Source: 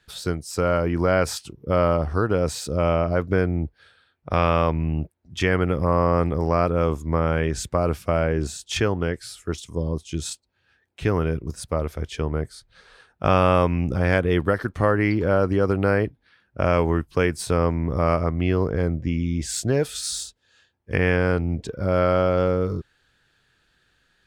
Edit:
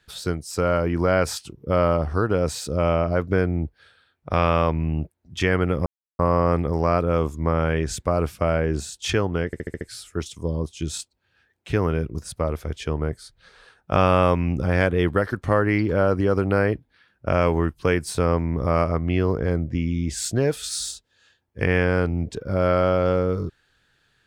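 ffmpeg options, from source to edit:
-filter_complex "[0:a]asplit=7[s0][s1][s2][s3][s4][s5][s6];[s0]atrim=end=5.86,asetpts=PTS-STARTPTS,afade=t=out:st=5.856:d=0.004:c=hsin,apad=pad_dur=0.33[s7];[s1]atrim=start=5.86:end=9.202,asetpts=PTS-STARTPTS,afade=t=in:d=0.004:c=hsin[s8];[s2]atrim=start=9.128:end=9.202[s9];[s3]atrim=start=9.128:end=9.202[s10];[s4]atrim=start=9.128:end=9.202[s11];[s5]atrim=start=9.128:end=9.202[s12];[s6]atrim=start=9.128[s13];[s7][s8]concat=n=2:v=0:a=1[s14];[s14][s9]acrossfade=d=0.004:c1=hsin:c2=hsin[s15];[s15][s10]acrossfade=d=0.004:c1=hsin:c2=hsin[s16];[s16][s11]acrossfade=d=0.004:c1=hsin:c2=hsin[s17];[s17][s12]acrossfade=d=0.004:c1=hsin:c2=hsin[s18];[s18][s13]acrossfade=d=0.004:c1=hsin:c2=hsin"

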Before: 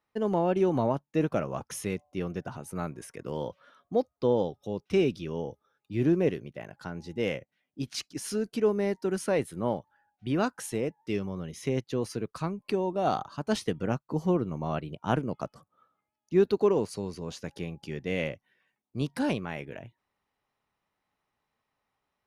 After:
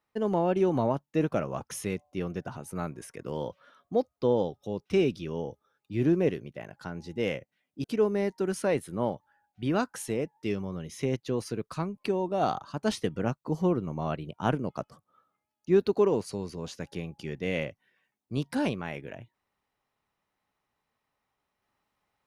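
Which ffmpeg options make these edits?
-filter_complex "[0:a]asplit=2[s0][s1];[s0]atrim=end=7.842[s2];[s1]atrim=start=8.478[s3];[s2][s3]acrossfade=d=0.004:c1=hsin:c2=hsin"

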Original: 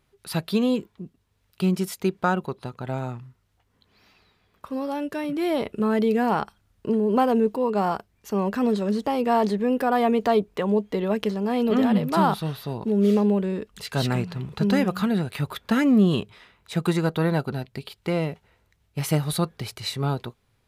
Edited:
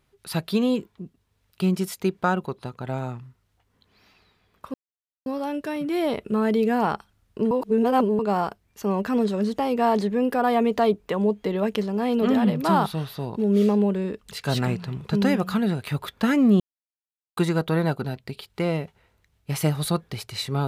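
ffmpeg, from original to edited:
-filter_complex "[0:a]asplit=6[s0][s1][s2][s3][s4][s5];[s0]atrim=end=4.74,asetpts=PTS-STARTPTS,afade=t=out:st=4.736:d=0.004:c=hsin,apad=pad_dur=0.52[s6];[s1]atrim=start=4.74:end=6.992,asetpts=PTS-STARTPTS,afade=t=in:d=0.004:c=hsin[s7];[s2]atrim=start=6.988:end=7.672,asetpts=PTS-STARTPTS,areverse[s8];[s3]atrim=start=7.668:end=16.08,asetpts=PTS-STARTPTS,afade=t=out:st=8.408:d=0.004:c=hsin[s9];[s4]atrim=start=16.08:end=16.85,asetpts=PTS-STARTPTS,volume=0[s10];[s5]atrim=start=16.85,asetpts=PTS-STARTPTS,afade=t=in:d=0.004:c=hsin[s11];[s6][s7]concat=n=2:v=0:a=1[s12];[s12][s8]acrossfade=d=0.004:c1=hsin:c2=hsin[s13];[s9][s10][s11]concat=n=3:v=0:a=1[s14];[s13][s14]acrossfade=d=0.004:c1=hsin:c2=hsin"

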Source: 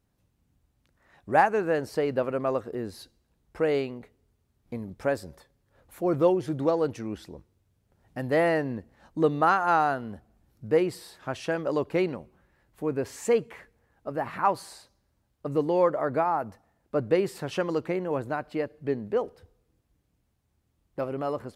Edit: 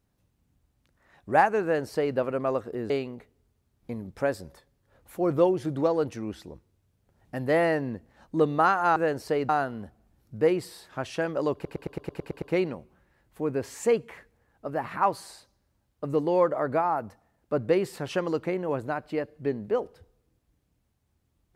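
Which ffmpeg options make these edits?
-filter_complex "[0:a]asplit=12[s0][s1][s2][s3][s4][s5][s6][s7][s8][s9][s10][s11];[s0]atrim=end=2.902[s12];[s1]atrim=start=3.728:end=9.792[s13];[s2]atrim=start=1.628:end=2.162[s14];[s3]atrim=start=9.788:end=11.952[s15];[s4]atrim=start=11.838:end=11.952[s16];[s5]atrim=start=11.838:end=11.952[s17];[s6]atrim=start=11.838:end=11.952[s18];[s7]atrim=start=11.838:end=11.952[s19];[s8]atrim=start=11.838:end=11.952[s20];[s9]atrim=start=11.838:end=11.952[s21];[s10]atrim=start=11.838:end=11.952[s22];[s11]atrim=start=11.838[s23];[s12][s13]acrossfade=d=0.004:c1=hsin:c2=hsin[s24];[s24][s14]acrossfade=d=0.004:c1=hsin:c2=hsin[s25];[s25][s15]acrossfade=d=0.004:c1=hsin:c2=hsin[s26];[s26][s16]acrossfade=d=0.004:c1=hsin:c2=hsin[s27];[s27][s17]acrossfade=d=0.004:c1=hsin:c2=hsin[s28];[s28][s18]acrossfade=d=0.004:c1=hsin:c2=hsin[s29];[s29][s19]acrossfade=d=0.004:c1=hsin:c2=hsin[s30];[s30][s20]acrossfade=d=0.004:c1=hsin:c2=hsin[s31];[s31][s21]acrossfade=d=0.004:c1=hsin:c2=hsin[s32];[s32][s22]acrossfade=d=0.004:c1=hsin:c2=hsin[s33];[s33][s23]acrossfade=d=0.004:c1=hsin:c2=hsin"

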